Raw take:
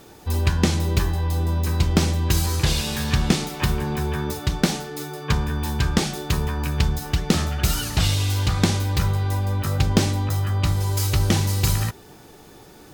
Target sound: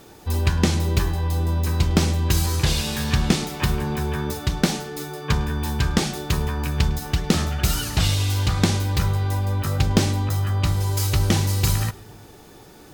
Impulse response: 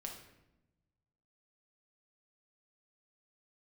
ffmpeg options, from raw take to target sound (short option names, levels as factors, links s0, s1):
-filter_complex "[0:a]asplit=2[s0][s1];[1:a]atrim=start_sample=2205,adelay=104[s2];[s1][s2]afir=irnorm=-1:irlink=0,volume=0.126[s3];[s0][s3]amix=inputs=2:normalize=0"